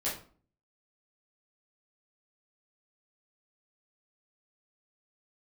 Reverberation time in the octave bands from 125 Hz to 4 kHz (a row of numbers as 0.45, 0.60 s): 0.65, 0.60, 0.45, 0.45, 0.35, 0.30 s